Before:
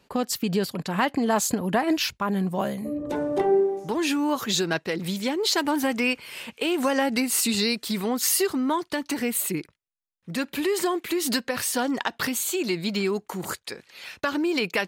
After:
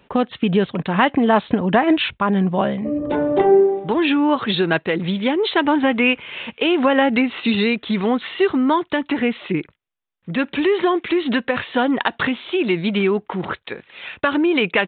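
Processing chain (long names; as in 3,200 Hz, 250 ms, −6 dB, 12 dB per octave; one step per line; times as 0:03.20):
downsampling to 8,000 Hz
level +7.5 dB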